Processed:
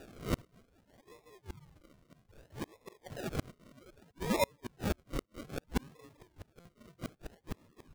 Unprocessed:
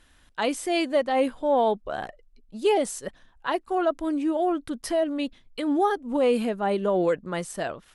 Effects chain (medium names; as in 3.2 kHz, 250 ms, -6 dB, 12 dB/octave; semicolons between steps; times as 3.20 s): reverse spectral sustain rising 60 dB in 0.31 s; distance through air 360 m; gated-style reverb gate 230 ms rising, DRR 3 dB; harmony voices +3 st -15 dB, +5 st -9 dB; feedback delay 201 ms, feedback 17%, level -17.5 dB; reverb removal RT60 0.67 s; Chebyshev high-pass 1 kHz, order 6; inverted gate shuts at -33 dBFS, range -37 dB; high-order bell 3.5 kHz -13.5 dB 1.2 oct; decimation with a swept rate 41×, swing 60% 0.62 Hz; buffer glitch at 6.60 s, samples 256, times 8; trim +15 dB